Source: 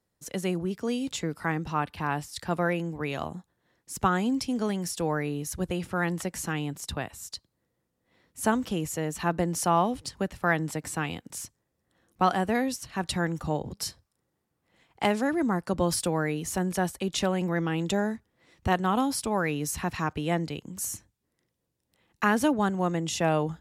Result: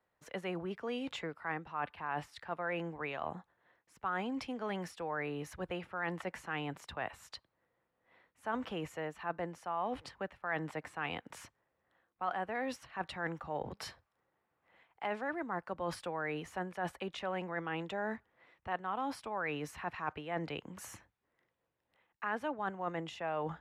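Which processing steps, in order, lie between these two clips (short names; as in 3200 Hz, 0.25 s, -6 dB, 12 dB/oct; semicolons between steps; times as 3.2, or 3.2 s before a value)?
three-band isolator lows -14 dB, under 530 Hz, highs -24 dB, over 2800 Hz; reverse; compressor 4:1, threshold -41 dBFS, peak gain reduction 18 dB; reverse; gain +5 dB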